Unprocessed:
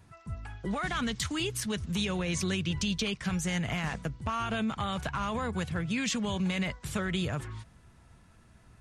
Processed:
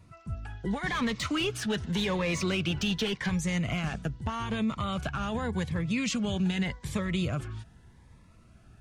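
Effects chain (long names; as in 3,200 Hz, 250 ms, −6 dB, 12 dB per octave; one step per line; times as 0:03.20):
high-shelf EQ 6,500 Hz −7.5 dB
0:00.86–0:03.30: mid-hump overdrive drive 17 dB, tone 2,000 Hz, clips at −20 dBFS
phaser whose notches keep moving one way rising 0.84 Hz
level +2.5 dB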